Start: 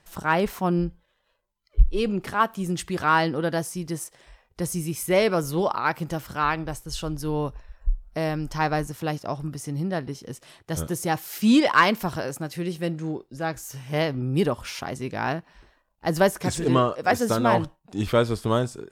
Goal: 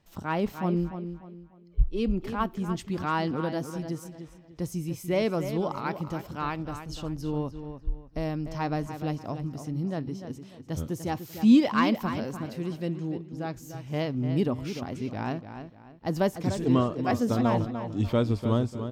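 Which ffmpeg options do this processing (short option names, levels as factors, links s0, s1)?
-filter_complex "[0:a]equalizer=f=100:t=o:w=0.67:g=9,equalizer=f=250:t=o:w=0.67:g=8,equalizer=f=1600:t=o:w=0.67:g=-5,equalizer=f=10000:t=o:w=0.67:g=-10,asplit=2[s0][s1];[s1]adelay=296,lowpass=f=4300:p=1,volume=0.335,asplit=2[s2][s3];[s3]adelay=296,lowpass=f=4300:p=1,volume=0.33,asplit=2[s4][s5];[s5]adelay=296,lowpass=f=4300:p=1,volume=0.33,asplit=2[s6][s7];[s7]adelay=296,lowpass=f=4300:p=1,volume=0.33[s8];[s2][s4][s6][s8]amix=inputs=4:normalize=0[s9];[s0][s9]amix=inputs=2:normalize=0,volume=0.447"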